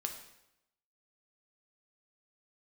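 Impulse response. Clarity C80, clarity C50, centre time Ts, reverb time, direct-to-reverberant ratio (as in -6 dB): 10.0 dB, 7.5 dB, 21 ms, 0.85 s, 3.5 dB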